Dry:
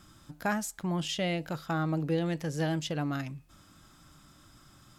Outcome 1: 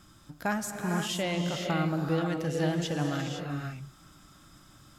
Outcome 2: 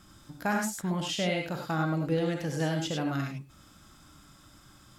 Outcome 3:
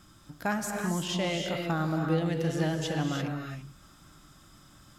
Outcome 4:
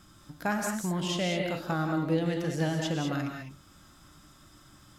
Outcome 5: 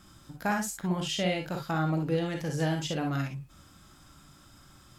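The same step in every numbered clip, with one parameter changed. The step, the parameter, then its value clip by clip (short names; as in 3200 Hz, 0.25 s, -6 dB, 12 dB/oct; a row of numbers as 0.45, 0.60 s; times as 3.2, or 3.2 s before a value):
non-linear reverb, gate: 540, 120, 360, 230, 80 ms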